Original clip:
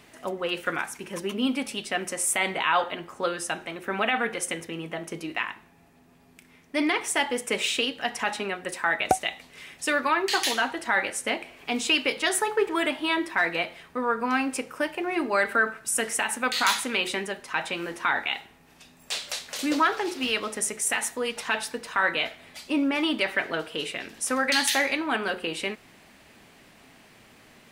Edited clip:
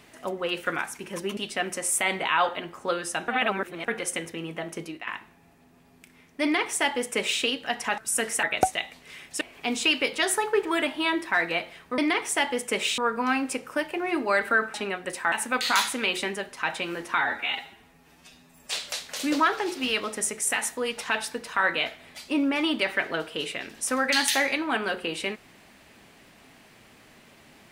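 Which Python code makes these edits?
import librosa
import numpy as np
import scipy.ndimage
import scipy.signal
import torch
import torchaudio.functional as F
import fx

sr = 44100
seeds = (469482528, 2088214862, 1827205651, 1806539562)

y = fx.edit(x, sr, fx.cut(start_s=1.37, length_s=0.35),
    fx.reverse_span(start_s=3.63, length_s=0.6),
    fx.fade_out_to(start_s=5.16, length_s=0.26, floor_db=-13.0),
    fx.duplicate(start_s=6.77, length_s=1.0, to_s=14.02),
    fx.swap(start_s=8.33, length_s=0.58, other_s=15.78, other_length_s=0.45),
    fx.cut(start_s=9.89, length_s=1.56),
    fx.stretch_span(start_s=18.09, length_s=1.03, factor=1.5), tone=tone)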